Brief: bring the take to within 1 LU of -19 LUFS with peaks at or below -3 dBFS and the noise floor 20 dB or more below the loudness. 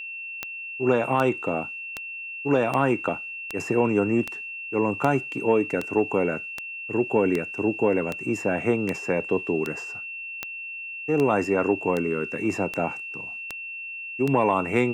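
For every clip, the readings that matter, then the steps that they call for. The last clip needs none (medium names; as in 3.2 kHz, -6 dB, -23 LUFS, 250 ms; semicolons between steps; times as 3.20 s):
clicks found 19; steady tone 2.7 kHz; tone level -33 dBFS; loudness -25.5 LUFS; peak level -5.0 dBFS; loudness target -19.0 LUFS
-> de-click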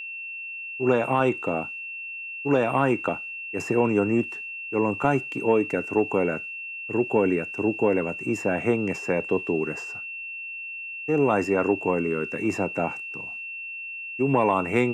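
clicks found 0; steady tone 2.7 kHz; tone level -33 dBFS
-> band-stop 2.7 kHz, Q 30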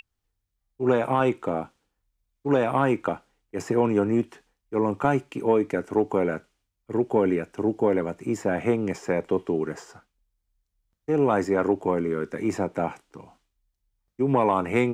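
steady tone not found; loudness -25.0 LUFS; peak level -9.5 dBFS; loudness target -19.0 LUFS
-> trim +6 dB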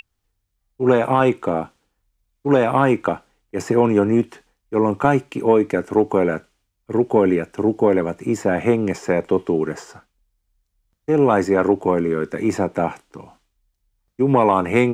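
loudness -19.0 LUFS; peak level -3.5 dBFS; noise floor -74 dBFS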